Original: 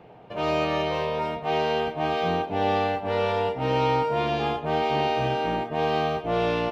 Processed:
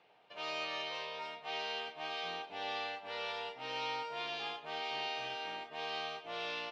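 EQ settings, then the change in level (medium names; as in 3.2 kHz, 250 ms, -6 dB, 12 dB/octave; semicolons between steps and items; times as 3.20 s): band-pass filter 4.8 kHz, Q 1.3; treble shelf 4.2 kHz -9.5 dB; +2.0 dB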